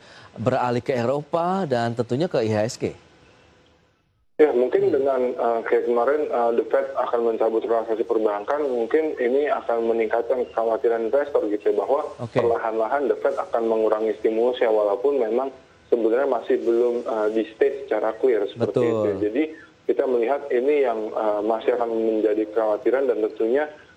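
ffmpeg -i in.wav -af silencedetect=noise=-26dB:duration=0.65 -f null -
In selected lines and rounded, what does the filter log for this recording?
silence_start: 2.90
silence_end: 4.40 | silence_duration: 1.50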